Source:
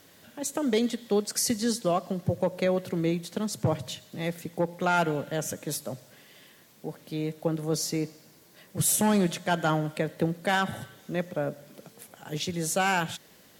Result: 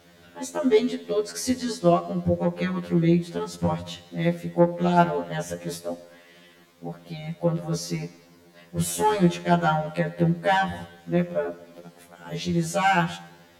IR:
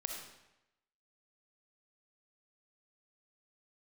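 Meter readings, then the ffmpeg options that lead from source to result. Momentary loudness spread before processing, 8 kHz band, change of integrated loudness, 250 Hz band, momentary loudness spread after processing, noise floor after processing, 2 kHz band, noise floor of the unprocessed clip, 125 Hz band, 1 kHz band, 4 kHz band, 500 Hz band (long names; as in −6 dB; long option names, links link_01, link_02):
15 LU, −5.0 dB, +3.5 dB, +4.0 dB, 15 LU, −54 dBFS, +2.0 dB, −56 dBFS, +6.0 dB, +5.0 dB, −0.5 dB, +4.0 dB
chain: -filter_complex "[0:a]lowpass=frequency=2700:poles=1,asplit=2[link_01][link_02];[1:a]atrim=start_sample=2205,adelay=62[link_03];[link_02][link_03]afir=irnorm=-1:irlink=0,volume=-16dB[link_04];[link_01][link_04]amix=inputs=2:normalize=0,afftfilt=real='re*2*eq(mod(b,4),0)':imag='im*2*eq(mod(b,4),0)':win_size=2048:overlap=0.75,volume=6.5dB"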